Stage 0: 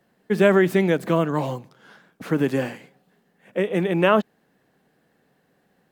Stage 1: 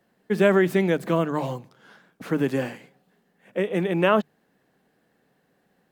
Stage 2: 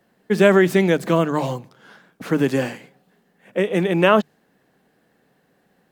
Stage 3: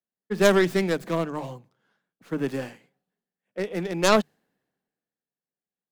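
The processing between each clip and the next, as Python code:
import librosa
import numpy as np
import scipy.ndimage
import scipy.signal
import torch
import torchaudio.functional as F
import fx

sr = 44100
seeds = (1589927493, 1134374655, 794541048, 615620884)

y1 = fx.hum_notches(x, sr, base_hz=50, count=3)
y1 = y1 * 10.0 ** (-2.0 / 20.0)
y2 = fx.dynamic_eq(y1, sr, hz=6000.0, q=0.8, threshold_db=-48.0, ratio=4.0, max_db=5)
y2 = y2 * 10.0 ** (4.5 / 20.0)
y3 = fx.tracing_dist(y2, sr, depth_ms=0.22)
y3 = fx.band_widen(y3, sr, depth_pct=70)
y3 = y3 * 10.0 ** (-8.5 / 20.0)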